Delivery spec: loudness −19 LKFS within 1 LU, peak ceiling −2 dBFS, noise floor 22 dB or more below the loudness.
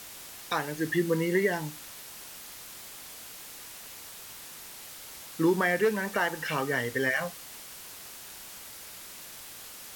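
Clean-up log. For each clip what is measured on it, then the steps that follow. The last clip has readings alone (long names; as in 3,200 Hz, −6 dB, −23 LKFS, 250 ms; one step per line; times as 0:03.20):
background noise floor −45 dBFS; target noise floor −54 dBFS; integrated loudness −32.0 LKFS; sample peak −14.0 dBFS; target loudness −19.0 LKFS
→ noise reduction from a noise print 9 dB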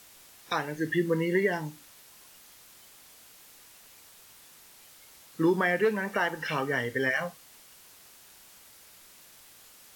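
background noise floor −54 dBFS; integrated loudness −28.5 LKFS; sample peak −14.5 dBFS; target loudness −19.0 LKFS
→ level +9.5 dB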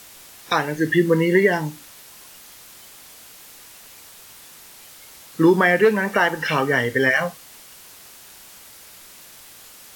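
integrated loudness −19.0 LKFS; sample peak −5.0 dBFS; background noise floor −45 dBFS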